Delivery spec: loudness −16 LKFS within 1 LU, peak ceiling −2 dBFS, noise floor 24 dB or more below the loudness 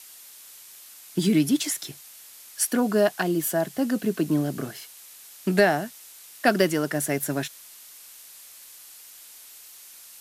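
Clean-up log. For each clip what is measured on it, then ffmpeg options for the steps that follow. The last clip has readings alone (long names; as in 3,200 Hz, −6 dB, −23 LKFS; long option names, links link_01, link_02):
background noise floor −47 dBFS; target noise floor −49 dBFS; integrated loudness −24.5 LKFS; sample peak −7.5 dBFS; target loudness −16.0 LKFS
→ -af "afftdn=noise_reduction=6:noise_floor=-47"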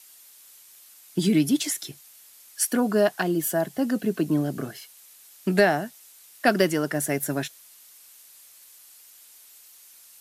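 background noise floor −52 dBFS; integrated loudness −24.5 LKFS; sample peak −7.5 dBFS; target loudness −16.0 LKFS
→ -af "volume=8.5dB,alimiter=limit=-2dB:level=0:latency=1"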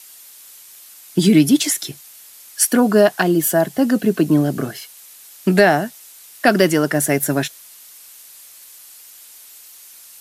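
integrated loudness −16.5 LKFS; sample peak −2.0 dBFS; background noise floor −43 dBFS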